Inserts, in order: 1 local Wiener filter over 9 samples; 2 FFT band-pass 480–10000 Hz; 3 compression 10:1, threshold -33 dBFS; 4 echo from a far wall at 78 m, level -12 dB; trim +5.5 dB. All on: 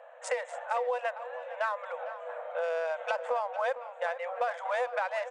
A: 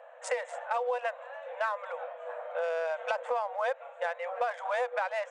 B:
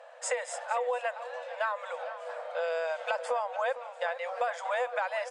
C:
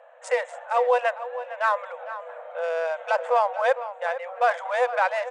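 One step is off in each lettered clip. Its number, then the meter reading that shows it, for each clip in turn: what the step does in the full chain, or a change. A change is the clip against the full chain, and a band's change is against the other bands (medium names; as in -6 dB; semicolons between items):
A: 4, echo-to-direct -13.5 dB to none; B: 1, 4 kHz band +3.5 dB; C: 3, mean gain reduction 4.0 dB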